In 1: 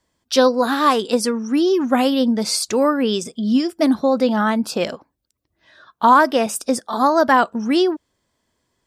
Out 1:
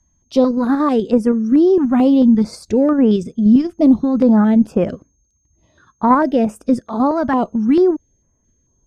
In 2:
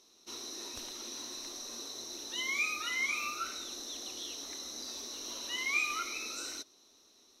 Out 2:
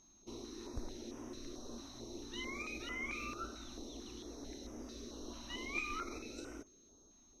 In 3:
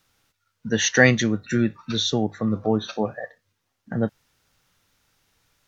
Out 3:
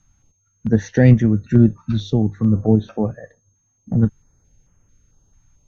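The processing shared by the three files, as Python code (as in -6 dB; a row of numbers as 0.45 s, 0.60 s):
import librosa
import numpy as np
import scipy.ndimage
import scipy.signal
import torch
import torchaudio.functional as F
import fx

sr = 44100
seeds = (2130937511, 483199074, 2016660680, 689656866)

p1 = fx.level_steps(x, sr, step_db=10)
p2 = x + F.gain(torch.from_numpy(p1), 1.5).numpy()
p3 = p2 + 10.0 ** (-46.0 / 20.0) * np.sin(2.0 * np.pi * 6400.0 * np.arange(len(p2)) / sr)
p4 = fx.tilt_eq(p3, sr, slope=-4.5)
p5 = fx.cheby_harmonics(p4, sr, harmonics=(2,), levels_db=(-20,), full_scale_db=7.5)
p6 = fx.filter_held_notch(p5, sr, hz=4.5, low_hz=450.0, high_hz=4100.0)
y = F.gain(torch.from_numpy(p6), -6.5).numpy()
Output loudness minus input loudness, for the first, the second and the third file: +3.0 LU, -9.0 LU, +5.0 LU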